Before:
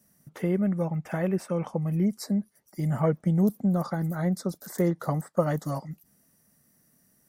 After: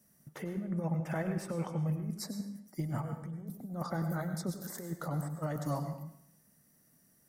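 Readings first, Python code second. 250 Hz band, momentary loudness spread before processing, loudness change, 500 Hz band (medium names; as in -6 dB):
-10.5 dB, 9 LU, -9.5 dB, -11.5 dB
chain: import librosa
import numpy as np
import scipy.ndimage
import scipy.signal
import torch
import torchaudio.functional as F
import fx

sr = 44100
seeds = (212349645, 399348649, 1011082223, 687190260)

y = fx.over_compress(x, sr, threshold_db=-28.0, ratio=-0.5)
y = fx.rev_plate(y, sr, seeds[0], rt60_s=0.71, hf_ratio=0.85, predelay_ms=85, drr_db=7.5)
y = y * librosa.db_to_amplitude(-6.5)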